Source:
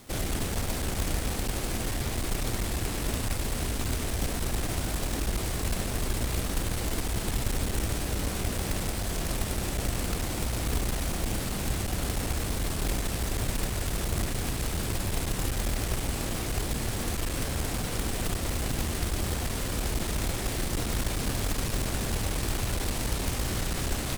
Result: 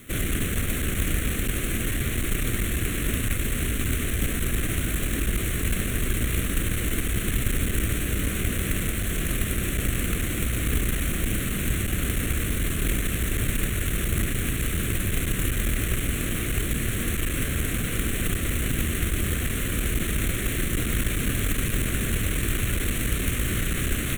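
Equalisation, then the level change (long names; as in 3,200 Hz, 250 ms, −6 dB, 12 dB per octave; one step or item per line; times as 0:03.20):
low-shelf EQ 200 Hz −4 dB
parametric band 580 Hz −4 dB 0.84 octaves
phaser with its sweep stopped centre 2,100 Hz, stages 4
+8.0 dB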